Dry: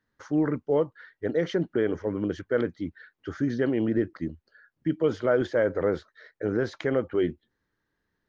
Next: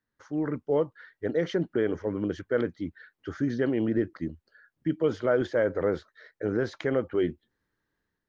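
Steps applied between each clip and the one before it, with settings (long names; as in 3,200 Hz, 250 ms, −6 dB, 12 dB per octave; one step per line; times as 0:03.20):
automatic gain control gain up to 6.5 dB
level −7.5 dB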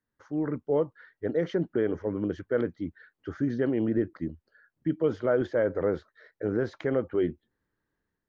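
high-shelf EQ 2,200 Hz −8.5 dB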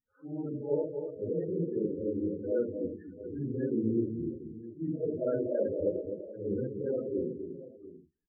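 random phases in long frames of 200 ms
multi-tap delay 246/335/687 ms −7.5/−17.5/−15.5 dB
spectral peaks only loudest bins 16
level −4.5 dB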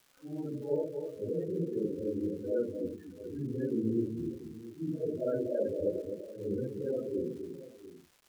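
surface crackle 580 per second −50 dBFS
level −1.5 dB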